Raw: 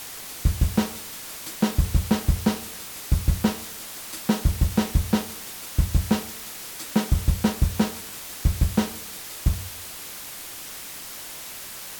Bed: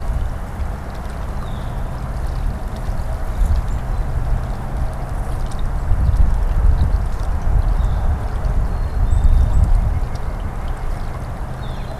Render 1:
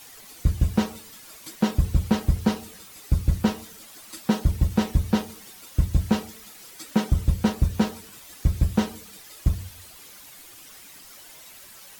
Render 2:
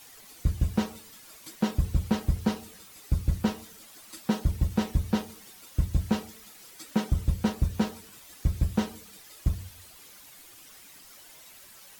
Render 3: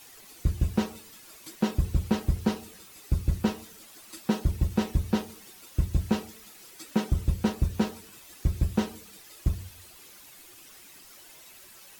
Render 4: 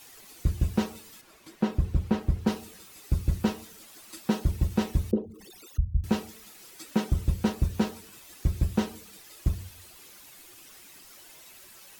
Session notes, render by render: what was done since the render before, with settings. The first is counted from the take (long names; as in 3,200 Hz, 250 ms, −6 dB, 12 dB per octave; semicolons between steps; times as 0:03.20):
broadband denoise 11 dB, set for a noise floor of −38 dBFS
level −4.5 dB
hollow resonant body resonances 360/2,600 Hz, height 6 dB
0:01.21–0:02.47: high-shelf EQ 3,800 Hz −12 dB; 0:05.11–0:06.04: spectral envelope exaggerated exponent 3